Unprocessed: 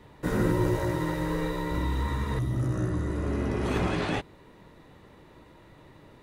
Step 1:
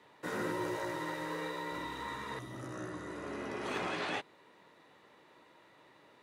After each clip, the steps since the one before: frequency weighting A; trim -4.5 dB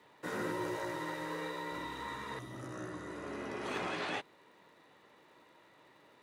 crackle 180 per s -62 dBFS; trim -1 dB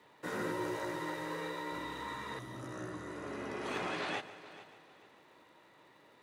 multi-head delay 145 ms, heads first and third, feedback 45%, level -17 dB

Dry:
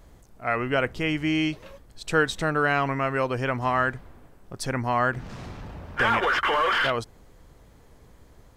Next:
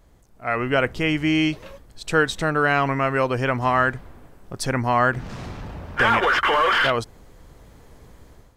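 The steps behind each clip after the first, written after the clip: level rider gain up to 9.5 dB; trim -4 dB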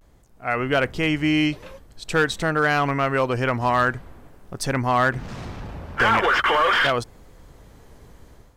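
hard clipper -11.5 dBFS, distortion -22 dB; vibrato 0.47 Hz 50 cents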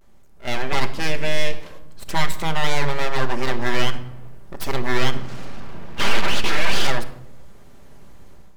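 full-wave rectifier; simulated room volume 2700 m³, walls furnished, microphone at 1.2 m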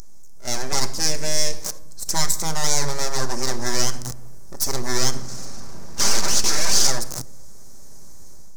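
jump at every zero crossing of -24 dBFS; resonant high shelf 4.2 kHz +12.5 dB, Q 3; trim -3 dB

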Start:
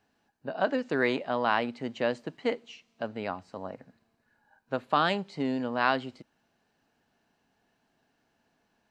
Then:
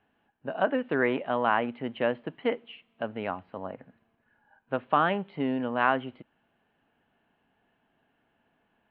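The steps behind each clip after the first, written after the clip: low-pass that closes with the level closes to 2.2 kHz, closed at -21.5 dBFS; elliptic low-pass 3.2 kHz, stop band 60 dB; trim +2 dB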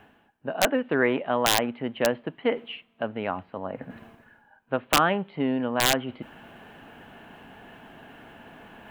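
reverse; upward compressor, threshold -32 dBFS; reverse; integer overflow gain 12.5 dB; trim +3 dB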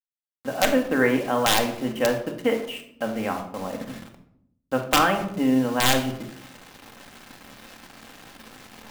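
bit crusher 7-bit; reverberation RT60 0.70 s, pre-delay 4 ms, DRR 2.5 dB

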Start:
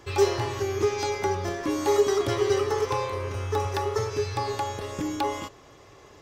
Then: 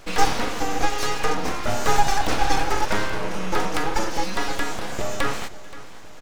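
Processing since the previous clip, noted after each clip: full-wave rectifier; feedback delay 526 ms, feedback 55%, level -18 dB; trim +6.5 dB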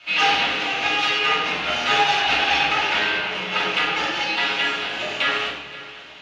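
band-pass filter 2.8 kHz, Q 3; reverberation RT60 1.3 s, pre-delay 3 ms, DRR -11 dB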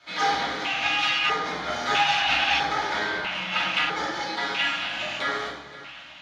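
LFO notch square 0.77 Hz 420–2700 Hz; trim -2.5 dB

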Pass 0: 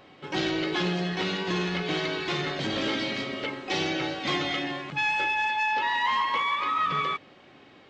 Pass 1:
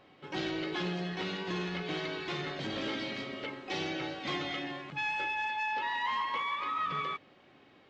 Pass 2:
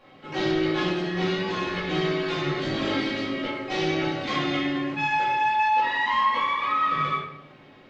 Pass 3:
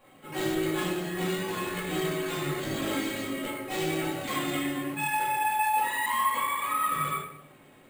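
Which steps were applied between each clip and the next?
treble shelf 7.1 kHz -6.5 dB; trim -7 dB
simulated room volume 160 m³, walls mixed, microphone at 2.3 m
flange 0.94 Hz, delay 1 ms, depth 8.6 ms, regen -65%; careless resampling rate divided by 4×, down none, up hold

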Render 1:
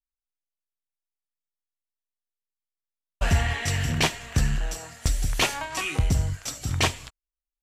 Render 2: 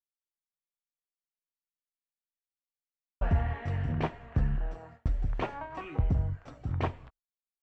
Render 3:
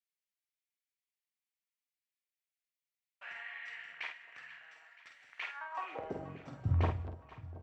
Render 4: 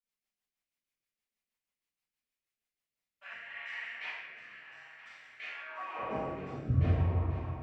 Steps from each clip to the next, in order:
low-pass 1.1 kHz 12 dB/octave; gate with hold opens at -37 dBFS; trim -4.5 dB
high-pass sweep 2.1 kHz -> 68 Hz, 5.45–6.84 s; doubling 49 ms -6 dB; echo whose repeats swap between lows and highs 241 ms, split 810 Hz, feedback 75%, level -13 dB; trim -4 dB
reverberation RT60 1.9 s, pre-delay 3 ms, DRR -15.5 dB; rotary cabinet horn 6.3 Hz, later 0.8 Hz, at 2.72 s; trim -9 dB

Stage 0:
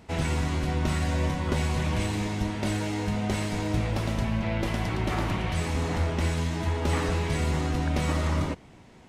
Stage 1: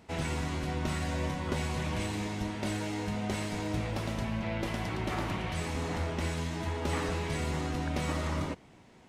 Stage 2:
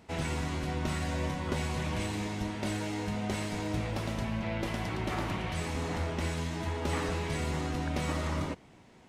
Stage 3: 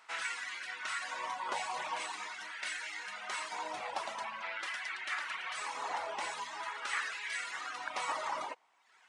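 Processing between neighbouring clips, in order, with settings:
bass shelf 100 Hz -6.5 dB; trim -4 dB
no audible change
reverb removal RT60 0.93 s; LFO high-pass sine 0.45 Hz 840–1700 Hz; resampled via 22.05 kHz

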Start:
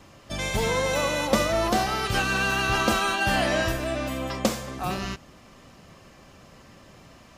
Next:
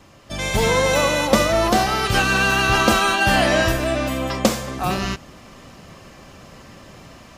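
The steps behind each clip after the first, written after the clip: level rider gain up to 6 dB; trim +1.5 dB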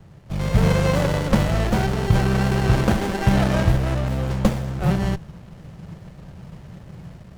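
resonant low shelf 210 Hz +6.5 dB, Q 3; sliding maximum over 33 samples; trim -1.5 dB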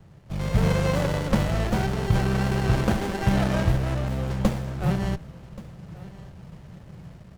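delay 1129 ms -19.5 dB; trim -4 dB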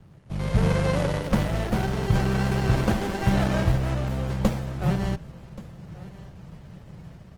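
Opus 24 kbps 48 kHz

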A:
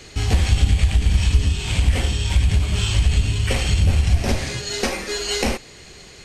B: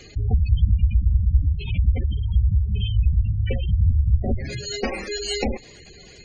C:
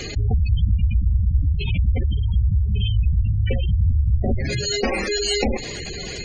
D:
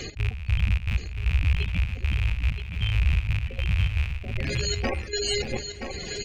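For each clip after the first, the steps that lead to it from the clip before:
spectral gate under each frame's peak -15 dB strong; trim -1.5 dB
level flattener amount 50%; trim -2.5 dB
rattle on loud lows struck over -23 dBFS, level -16 dBFS; trance gate "x.x..xxx.x...xxx" 155 bpm -12 dB; on a send: feedback delay 975 ms, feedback 17%, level -7.5 dB; on the sum: trim -4.5 dB

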